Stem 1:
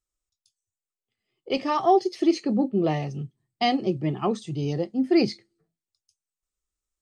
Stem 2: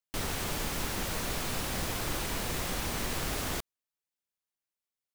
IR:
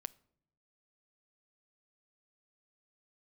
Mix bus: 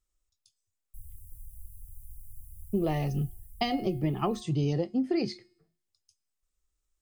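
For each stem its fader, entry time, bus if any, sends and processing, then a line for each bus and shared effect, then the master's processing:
+1.5 dB, 0.00 s, muted 1.16–2.73 s, no send, compression 12:1, threshold -26 dBFS, peak gain reduction 13 dB
3.28 s -13.5 dB -> 3.89 s -21.5 dB, 0.80 s, no send, inverse Chebyshev band-stop 470–2500 Hz, stop band 80 dB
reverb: none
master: bass shelf 71 Hz +10 dB; de-hum 359.7 Hz, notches 15

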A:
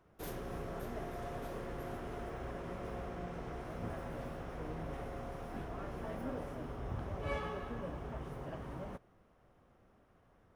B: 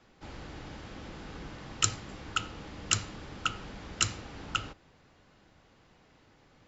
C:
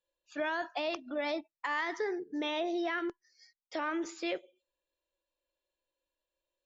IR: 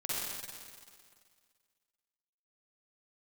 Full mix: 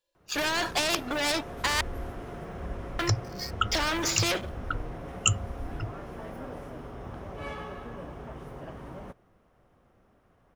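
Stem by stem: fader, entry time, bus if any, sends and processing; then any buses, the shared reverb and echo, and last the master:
-8.5 dB, 0.15 s, no send, none
-4.0 dB, 1.25 s, no send, drifting ripple filter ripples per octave 0.76, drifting +1.1 Hz, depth 16 dB; bass shelf 180 Hz +10.5 dB; spectral contrast expander 2.5:1
-1.5 dB, 0.00 s, muted 1.81–2.99 s, no send, peaking EQ 5.1 kHz +6 dB 0.64 oct; waveshaping leveller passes 3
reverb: none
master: spectrum-flattening compressor 2:1

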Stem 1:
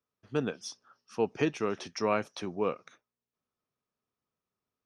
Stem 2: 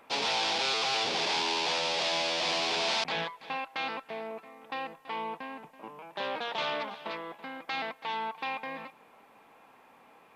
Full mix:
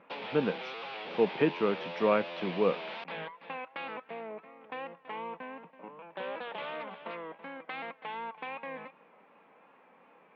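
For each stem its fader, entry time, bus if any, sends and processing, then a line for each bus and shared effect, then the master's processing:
+1.0 dB, 0.00 s, no send, none
-2.5 dB, 0.00 s, no send, vibrato 2.7 Hz 69 cents; compression, threshold -32 dBFS, peak gain reduction 7 dB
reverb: none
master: cabinet simulation 180–2900 Hz, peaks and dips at 180 Hz +8 dB, 520 Hz +5 dB, 750 Hz -3 dB

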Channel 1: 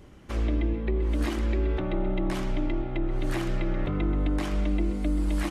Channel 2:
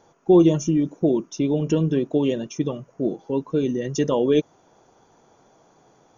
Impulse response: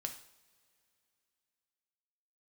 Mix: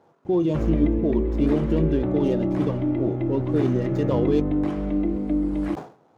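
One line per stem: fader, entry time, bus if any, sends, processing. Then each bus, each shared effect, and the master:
-1.0 dB, 0.25 s, send -3 dB, tilt shelf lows +8 dB, about 1.1 kHz; auto duck -8 dB, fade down 1.95 s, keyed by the second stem
-1.0 dB, 0.00 s, no send, median filter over 15 samples; peak limiter -14 dBFS, peak gain reduction 7 dB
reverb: on, pre-delay 3 ms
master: high-pass 92 Hz 12 dB/octave; treble shelf 5.5 kHz -8.5 dB; decay stretcher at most 140 dB/s

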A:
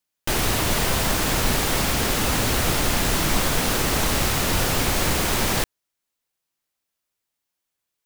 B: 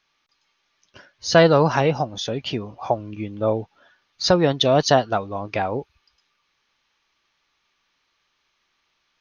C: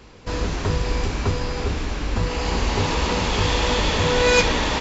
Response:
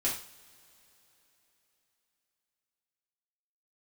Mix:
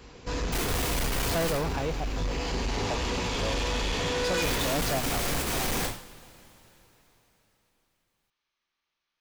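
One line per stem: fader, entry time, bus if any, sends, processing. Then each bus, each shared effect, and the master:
-9.0 dB, 0.25 s, muted 1.57–4.42 s, send -3.5 dB, square tremolo 2.3 Hz, depth 60%, duty 90%
-5.5 dB, 0.00 s, no send, upward expansion 1.5:1, over -27 dBFS
-7.5 dB, 0.00 s, send -5.5 dB, treble shelf 5.2 kHz +3.5 dB; auto duck -9 dB, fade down 0.70 s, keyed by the second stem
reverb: on, pre-delay 3 ms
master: saturation -24 dBFS, distortion -8 dB

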